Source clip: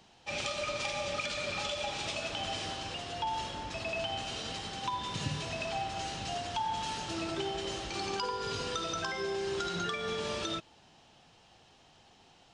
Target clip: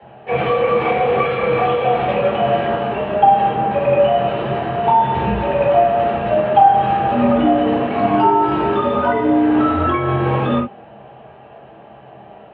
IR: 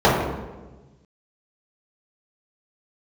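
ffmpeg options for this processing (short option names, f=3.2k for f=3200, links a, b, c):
-filter_complex "[0:a]highpass=f=220:t=q:w=0.5412,highpass=f=220:t=q:w=1.307,lowpass=f=2.9k:t=q:w=0.5176,lowpass=f=2.9k:t=q:w=0.7071,lowpass=f=2.9k:t=q:w=1.932,afreqshift=-89,asettb=1/sr,asplit=3[a][b][c];[a]atrim=end=0.764[d];[b]atrim=start=0.76:end=1.2,asetpts=PTS-STARTPTS,afade=t=in:d=0.004:c=qsin,afade=t=out:st=0.436:d=0.004:c=qsin,asplit=2[e][f];[f]adelay=28,volume=-5dB[g];[e][g]amix=inputs=2:normalize=0,atrim=end_sample=19404[h];[c]atrim=start=1.196[i];[d][h]acrossfade=d=0.004:c1=hsin:c2=qsin[j];[j][i]acrossfade=d=0.004:c1=qsin:c2=hsin[k];[1:a]atrim=start_sample=2205,atrim=end_sample=3528[l];[k][l]afir=irnorm=-1:irlink=0,volume=-5dB"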